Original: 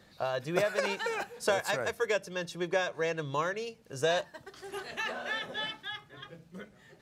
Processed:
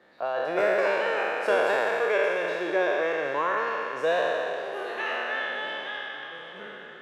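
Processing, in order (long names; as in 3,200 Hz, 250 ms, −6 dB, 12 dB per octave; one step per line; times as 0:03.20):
peak hold with a decay on every bin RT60 2.73 s
three-way crossover with the lows and the highs turned down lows −22 dB, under 260 Hz, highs −18 dB, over 2,800 Hz
echo with a time of its own for lows and highs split 710 Hz, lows 206 ms, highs 790 ms, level −14 dB
level +1.5 dB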